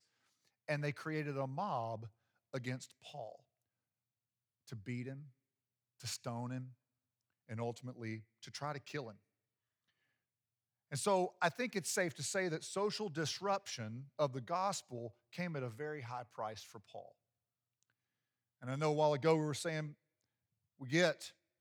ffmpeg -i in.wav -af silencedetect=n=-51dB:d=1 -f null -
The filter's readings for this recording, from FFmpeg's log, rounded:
silence_start: 3.35
silence_end: 4.68 | silence_duration: 1.32
silence_start: 9.12
silence_end: 10.92 | silence_duration: 1.79
silence_start: 17.09
silence_end: 18.62 | silence_duration: 1.53